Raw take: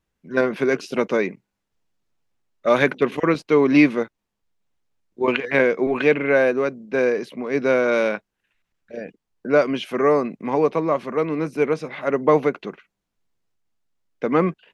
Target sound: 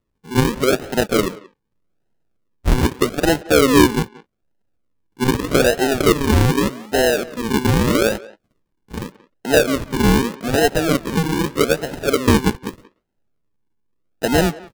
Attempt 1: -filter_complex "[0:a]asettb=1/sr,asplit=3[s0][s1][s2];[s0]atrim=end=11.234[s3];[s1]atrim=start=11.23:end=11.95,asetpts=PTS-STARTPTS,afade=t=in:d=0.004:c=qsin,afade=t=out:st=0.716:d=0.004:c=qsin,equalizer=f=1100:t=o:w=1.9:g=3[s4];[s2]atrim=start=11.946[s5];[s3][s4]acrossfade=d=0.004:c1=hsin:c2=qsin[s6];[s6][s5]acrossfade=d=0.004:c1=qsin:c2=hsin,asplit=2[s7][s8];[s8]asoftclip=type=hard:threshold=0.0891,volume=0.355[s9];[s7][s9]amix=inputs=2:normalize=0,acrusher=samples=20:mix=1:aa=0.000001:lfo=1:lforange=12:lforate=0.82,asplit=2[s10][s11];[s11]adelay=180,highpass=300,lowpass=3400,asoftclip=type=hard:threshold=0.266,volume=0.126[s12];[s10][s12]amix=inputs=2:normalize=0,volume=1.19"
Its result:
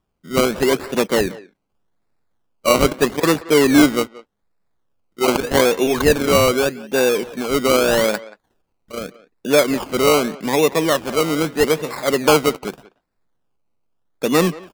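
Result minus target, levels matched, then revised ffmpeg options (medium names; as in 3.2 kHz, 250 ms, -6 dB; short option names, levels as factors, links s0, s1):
decimation with a swept rate: distortion -21 dB
-filter_complex "[0:a]asettb=1/sr,asplit=3[s0][s1][s2];[s0]atrim=end=11.234[s3];[s1]atrim=start=11.23:end=11.95,asetpts=PTS-STARTPTS,afade=t=in:d=0.004:c=qsin,afade=t=out:st=0.716:d=0.004:c=qsin,equalizer=f=1100:t=o:w=1.9:g=3[s4];[s2]atrim=start=11.946[s5];[s3][s4]acrossfade=d=0.004:c1=hsin:c2=qsin[s6];[s6][s5]acrossfade=d=0.004:c1=qsin:c2=hsin,asplit=2[s7][s8];[s8]asoftclip=type=hard:threshold=0.0891,volume=0.355[s9];[s7][s9]amix=inputs=2:normalize=0,acrusher=samples=54:mix=1:aa=0.000001:lfo=1:lforange=32.4:lforate=0.82,asplit=2[s10][s11];[s11]adelay=180,highpass=300,lowpass=3400,asoftclip=type=hard:threshold=0.266,volume=0.126[s12];[s10][s12]amix=inputs=2:normalize=0,volume=1.19"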